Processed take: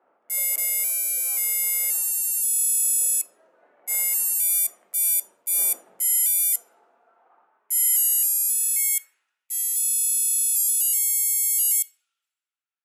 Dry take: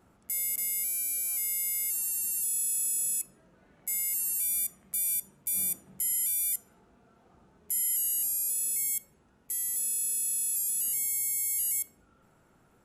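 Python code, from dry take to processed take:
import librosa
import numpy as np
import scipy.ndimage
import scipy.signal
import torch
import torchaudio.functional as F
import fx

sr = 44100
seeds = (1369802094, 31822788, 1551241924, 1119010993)

y = fx.filter_sweep_highpass(x, sr, from_hz=580.0, to_hz=3000.0, start_s=6.63, end_s=9.87, q=1.6)
y = fx.low_shelf_res(y, sr, hz=200.0, db=-6.0, q=1.5)
y = fx.band_widen(y, sr, depth_pct=100)
y = y * 10.0 ** (8.0 / 20.0)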